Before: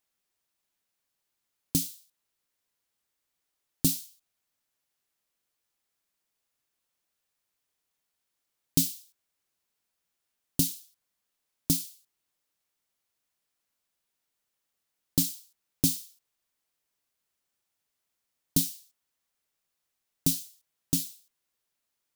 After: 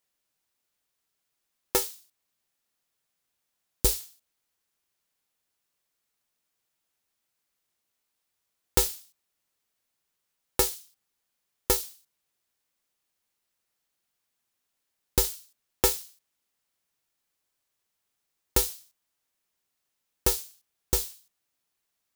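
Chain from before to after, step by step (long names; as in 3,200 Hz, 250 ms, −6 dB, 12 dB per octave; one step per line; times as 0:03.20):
ring modulator with a square carrier 220 Hz
level +1.5 dB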